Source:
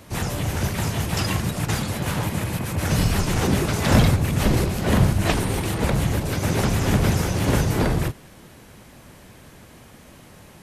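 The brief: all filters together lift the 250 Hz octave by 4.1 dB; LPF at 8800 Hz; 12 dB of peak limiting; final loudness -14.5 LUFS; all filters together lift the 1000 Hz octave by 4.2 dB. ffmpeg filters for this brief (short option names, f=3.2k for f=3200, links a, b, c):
-af "lowpass=8.8k,equalizer=f=250:t=o:g=5.5,equalizer=f=1k:t=o:g=5,volume=8.5dB,alimiter=limit=-4.5dB:level=0:latency=1"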